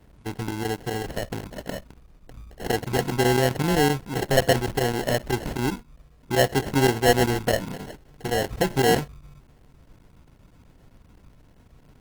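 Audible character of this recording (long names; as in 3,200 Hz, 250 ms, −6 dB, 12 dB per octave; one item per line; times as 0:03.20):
aliases and images of a low sample rate 1,200 Hz, jitter 0%
chopped level 7.7 Hz, depth 65%, duty 90%
Opus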